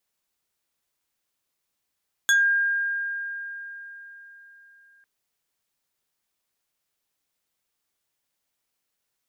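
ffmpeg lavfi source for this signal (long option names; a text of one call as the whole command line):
ffmpeg -f lavfi -i "aevalsrc='0.178*pow(10,-3*t/4.07)*sin(2*PI*1610*t+1.3*pow(10,-3*t/0.19)*sin(2*PI*3.12*1610*t))':duration=2.75:sample_rate=44100" out.wav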